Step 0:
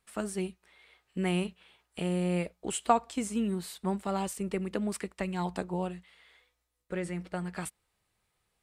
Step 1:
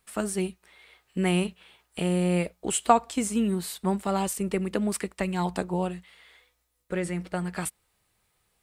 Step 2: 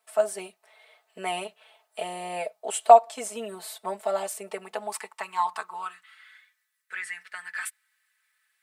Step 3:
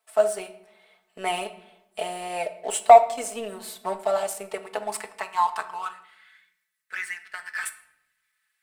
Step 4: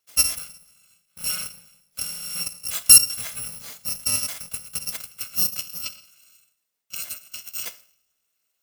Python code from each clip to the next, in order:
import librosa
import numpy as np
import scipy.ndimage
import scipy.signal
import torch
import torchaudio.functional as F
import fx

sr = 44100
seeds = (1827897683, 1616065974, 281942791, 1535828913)

y1 = fx.high_shelf(x, sr, hz=10000.0, db=7.0)
y1 = y1 * 10.0 ** (5.0 / 20.0)
y2 = y1 + 0.93 * np.pad(y1, (int(4.6 * sr / 1000.0), 0))[:len(y1)]
y2 = fx.filter_sweep_highpass(y2, sr, from_hz=640.0, to_hz=1700.0, start_s=4.37, end_s=6.53, q=4.8)
y2 = y2 * 10.0 ** (-6.0 / 20.0)
y3 = fx.leveller(y2, sr, passes=1)
y3 = fx.room_shoebox(y3, sr, seeds[0], volume_m3=230.0, walls='mixed', distance_m=0.34)
y3 = y3 * 10.0 ** (-1.0 / 20.0)
y4 = fx.bit_reversed(y3, sr, seeds[1], block=128)